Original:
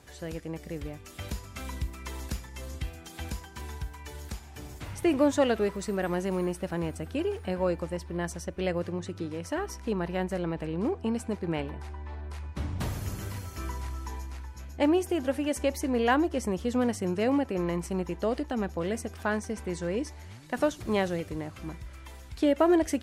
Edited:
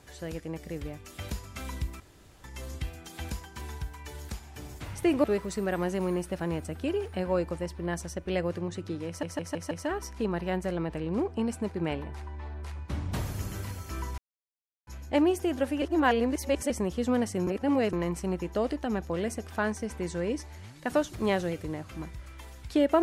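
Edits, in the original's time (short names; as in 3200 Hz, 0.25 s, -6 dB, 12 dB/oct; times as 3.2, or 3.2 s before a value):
2–2.44 room tone
5.24–5.55 cut
9.38 stutter 0.16 s, 5 plays
13.85–14.54 mute
15.49–16.37 reverse
17.14–17.6 reverse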